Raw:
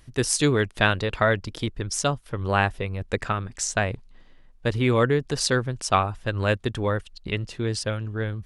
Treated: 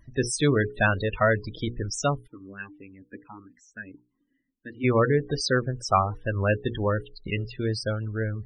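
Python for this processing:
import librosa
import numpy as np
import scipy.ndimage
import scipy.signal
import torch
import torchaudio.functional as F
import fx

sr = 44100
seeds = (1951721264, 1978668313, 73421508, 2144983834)

y = fx.hum_notches(x, sr, base_hz=60, count=8)
y = fx.spec_topn(y, sr, count=32)
y = fx.vowel_sweep(y, sr, vowels='i-u', hz=fx.line((2.26, 2.4), (4.83, 0.87)), at=(2.26, 4.83), fade=0.02)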